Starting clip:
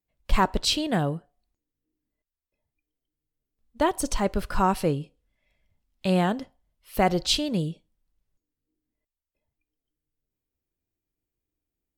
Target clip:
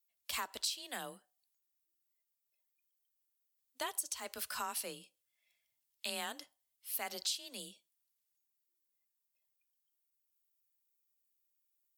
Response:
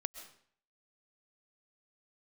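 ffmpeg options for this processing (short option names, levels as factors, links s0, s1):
-af "aderivative,afreqshift=27,acompressor=threshold=0.0112:ratio=10,volume=1.68"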